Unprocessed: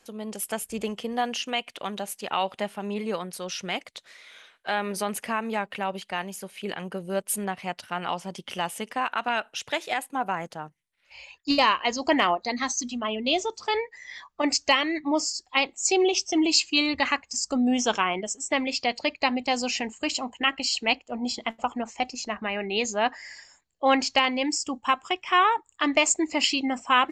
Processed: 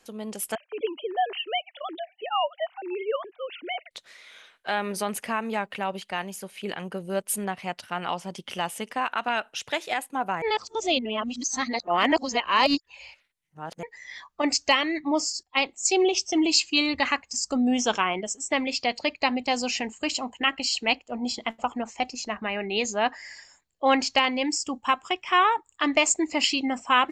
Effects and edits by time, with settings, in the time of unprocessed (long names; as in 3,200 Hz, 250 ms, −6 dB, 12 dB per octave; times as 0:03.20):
0:00.55–0:03.91: three sine waves on the formant tracks
0:10.42–0:13.83: reverse
0:15.43–0:16.24: multiband upward and downward expander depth 40%